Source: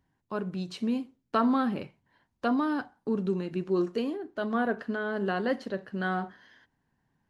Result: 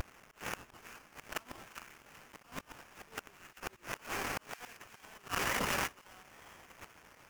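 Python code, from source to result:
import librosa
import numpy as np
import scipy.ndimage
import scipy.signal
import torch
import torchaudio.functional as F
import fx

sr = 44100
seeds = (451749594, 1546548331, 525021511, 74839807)

p1 = x + 0.5 * 10.0 ** (-40.5 / 20.0) * np.sign(x)
p2 = scipy.signal.sosfilt(scipy.signal.butter(2, 1400.0, 'highpass', fs=sr, output='sos'), p1)
p3 = fx.auto_swell(p2, sr, attack_ms=184.0)
p4 = fx.level_steps(p3, sr, step_db=15)
p5 = p3 + F.gain(torch.from_numpy(p4), 1.0).numpy()
p6 = fx.high_shelf_res(p5, sr, hz=1900.0, db=9.0, q=3.0)
p7 = fx.gate_flip(p6, sr, shuts_db=-27.0, range_db=-24)
p8 = fx.sample_hold(p7, sr, seeds[0], rate_hz=4100.0, jitter_pct=20)
p9 = fx.vibrato(p8, sr, rate_hz=0.66, depth_cents=33.0)
p10 = fx.echo_wet_highpass(p9, sr, ms=392, feedback_pct=48, hz=1800.0, wet_db=-14.5)
p11 = fx.env_flatten(p10, sr, amount_pct=100, at=(5.33, 5.86), fade=0.02)
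y = F.gain(torch.from_numpy(p11), 4.5).numpy()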